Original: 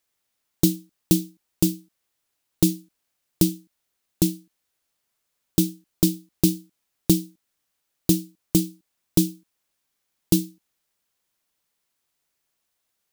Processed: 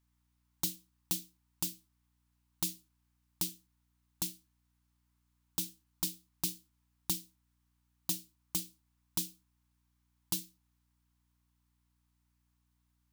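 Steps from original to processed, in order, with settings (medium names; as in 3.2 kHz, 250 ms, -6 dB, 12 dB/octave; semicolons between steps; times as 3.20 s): resonant low shelf 640 Hz -13.5 dB, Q 3; hum 60 Hz, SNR 33 dB; trim -8.5 dB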